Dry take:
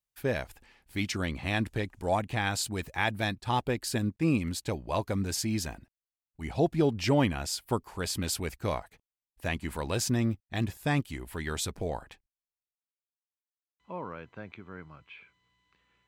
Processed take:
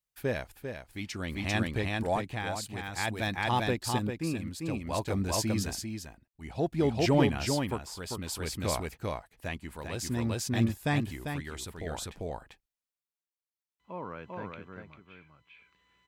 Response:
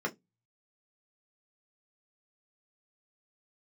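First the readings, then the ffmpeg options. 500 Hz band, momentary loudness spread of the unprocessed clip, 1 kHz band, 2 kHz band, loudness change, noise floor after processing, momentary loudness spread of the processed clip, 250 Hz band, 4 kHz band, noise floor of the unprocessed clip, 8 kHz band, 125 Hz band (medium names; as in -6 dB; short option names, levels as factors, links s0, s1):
-0.5 dB, 16 LU, -0.5 dB, -1.0 dB, -1.0 dB, under -85 dBFS, 13 LU, -0.5 dB, -1.0 dB, under -85 dBFS, -1.5 dB, -0.5 dB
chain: -af "acontrast=80,aecho=1:1:396:0.708,tremolo=f=0.56:d=0.58,volume=0.447"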